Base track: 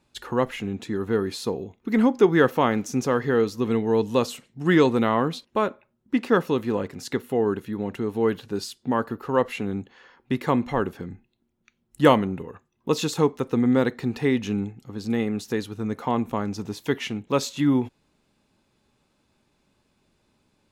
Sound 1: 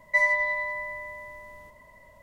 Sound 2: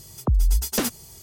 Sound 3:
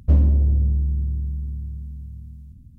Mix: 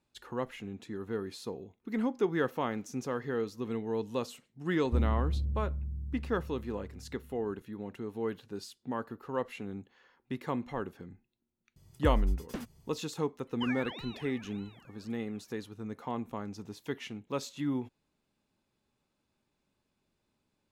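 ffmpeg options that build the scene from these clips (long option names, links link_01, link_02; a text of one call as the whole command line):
ffmpeg -i bed.wav -i cue0.wav -i cue1.wav -i cue2.wav -filter_complex "[0:a]volume=-12dB[link_01];[2:a]bass=frequency=250:gain=8,treble=frequency=4000:gain=-12[link_02];[1:a]aeval=exprs='val(0)*sin(2*PI*1100*n/s+1100*0.85/1.7*sin(2*PI*1.7*n/s))':channel_layout=same[link_03];[3:a]atrim=end=2.78,asetpts=PTS-STARTPTS,volume=-13.5dB,afade=type=in:duration=0.004:curve=hsin,afade=type=out:start_time=2.776:duration=0.004:curve=hsin,adelay=4840[link_04];[link_02]atrim=end=1.22,asetpts=PTS-STARTPTS,volume=-17dB,afade=type=in:duration=0.004:curve=hsin,afade=type=out:start_time=1.216:duration=0.004:curve=hsin,adelay=11760[link_05];[link_03]atrim=end=2.22,asetpts=PTS-STARTPTS,volume=-14dB,afade=type=in:duration=0.004:curve=hsin,afade=type=out:start_time=2.216:duration=0.004:curve=hsin,adelay=13470[link_06];[link_01][link_04][link_05][link_06]amix=inputs=4:normalize=0" out.wav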